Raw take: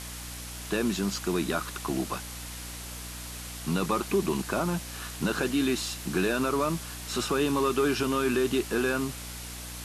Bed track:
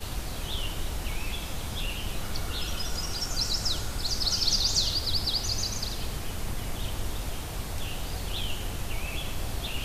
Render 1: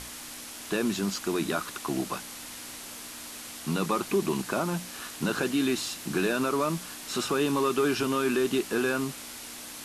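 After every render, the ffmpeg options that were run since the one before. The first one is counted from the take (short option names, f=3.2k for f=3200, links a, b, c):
-af "bandreject=f=60:t=h:w=6,bandreject=f=120:t=h:w=6,bandreject=f=180:t=h:w=6"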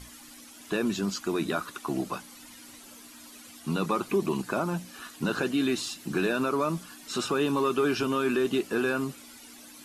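-af "afftdn=nr=12:nf=-42"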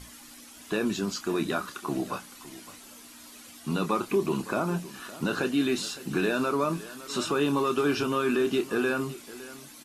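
-filter_complex "[0:a]asplit=2[a][b];[b]adelay=28,volume=-10.5dB[c];[a][c]amix=inputs=2:normalize=0,aecho=1:1:561:0.141"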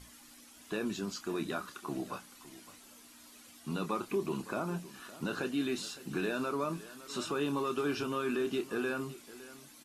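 -af "volume=-7.5dB"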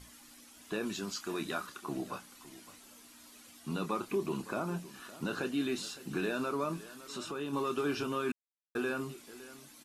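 -filter_complex "[0:a]asettb=1/sr,asplit=3[a][b][c];[a]atrim=end=0.834[d];[b]atrim=start=0.83:end=1.67,asetpts=PTS-STARTPTS,afade=t=in:d=0.004:c=qsin,afade=t=out:st=0.836:d=0.004:c=qsin,tiltshelf=f=720:g=-3[e];[c]atrim=start=1.666[f];[d][e]acrossfade=d=0.004:c1=hsin:c2=qsin[g];[g][f]acrossfade=d=0.004:c1=qsin:c2=hsin,asplit=3[h][i][j];[h]afade=t=out:st=6.93:d=0.02[k];[i]acompressor=threshold=-43dB:ratio=1.5:attack=3.2:release=140:knee=1:detection=peak,afade=t=in:st=6.93:d=0.02,afade=t=out:st=7.52:d=0.02[l];[j]afade=t=in:st=7.52:d=0.02[m];[k][l][m]amix=inputs=3:normalize=0,asplit=3[n][o][p];[n]atrim=end=8.32,asetpts=PTS-STARTPTS,afade=t=out:st=8.316:d=0.004:c=hsin[q];[o]atrim=start=8.32:end=8.75,asetpts=PTS-STARTPTS,volume=0[r];[p]atrim=start=8.75,asetpts=PTS-STARTPTS,afade=t=in:d=0.004:c=hsin[s];[q][r][s]concat=n=3:v=0:a=1"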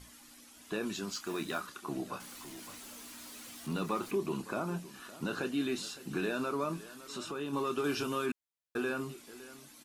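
-filter_complex "[0:a]asettb=1/sr,asplit=3[a][b][c];[a]atrim=end=1.124[d];[b]atrim=start=1.12:end=1.61,asetpts=PTS-STARTPTS,afade=t=in:d=0.004:c=qsin,afade=t=out:st=0.486:d=0.004:c=qsin,acrusher=bits=5:mode=log:mix=0:aa=0.000001[e];[c]atrim=start=1.606[f];[d][e]acrossfade=d=0.004:c1=hsin:c2=qsin[g];[g][f]acrossfade=d=0.004:c1=qsin:c2=hsin,asettb=1/sr,asplit=3[h][i][j];[h]atrim=end=2.204[k];[i]atrim=start=2.2:end=4.11,asetpts=PTS-STARTPTS,afade=t=in:d=0.004:c=qsin,afade=t=out:st=1.906:d=0.004:c=qsin,aeval=exprs='val(0)+0.5*0.00447*sgn(val(0))':c=same[l];[j]atrim=start=4.106[m];[k][l]acrossfade=d=0.004:c1=hsin:c2=qsin[n];[n][m]acrossfade=d=0.004:c1=qsin:c2=hsin,asettb=1/sr,asplit=3[o][p][q];[o]atrim=end=7.844[r];[p]atrim=start=7.84:end=8.26,asetpts=PTS-STARTPTS,afade=t=in:d=0.004:c=qsin,afade=t=out:st=0.416:d=0.004:c=qsin,highshelf=f=4.4k:g=6.5[s];[q]atrim=start=8.256[t];[r][s]acrossfade=d=0.004:c1=hsin:c2=qsin[u];[u][t]acrossfade=d=0.004:c1=qsin:c2=hsin"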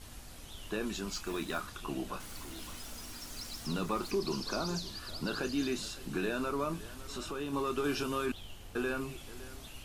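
-filter_complex "[1:a]volume=-16.5dB[a];[0:a][a]amix=inputs=2:normalize=0"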